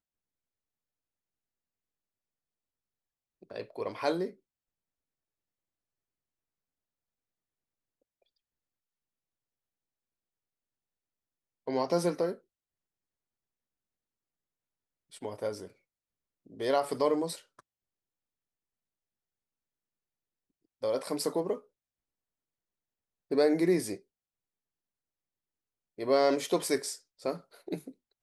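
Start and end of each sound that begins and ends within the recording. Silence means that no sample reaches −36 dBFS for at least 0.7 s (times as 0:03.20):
0:03.51–0:04.29
0:11.68–0:12.32
0:15.22–0:15.65
0:16.60–0:17.36
0:20.83–0:21.56
0:23.31–0:23.95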